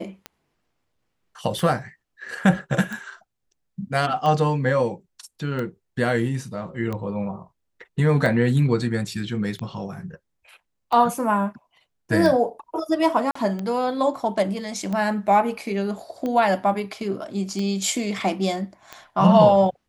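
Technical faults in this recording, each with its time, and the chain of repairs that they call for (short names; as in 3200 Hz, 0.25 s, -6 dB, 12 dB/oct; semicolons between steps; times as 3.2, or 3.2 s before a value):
tick 45 rpm -17 dBFS
13.31–13.35 gap 44 ms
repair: de-click; interpolate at 13.31, 44 ms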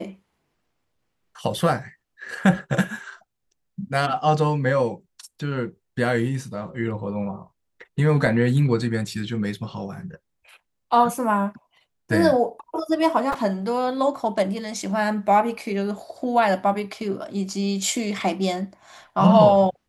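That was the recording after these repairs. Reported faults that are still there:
none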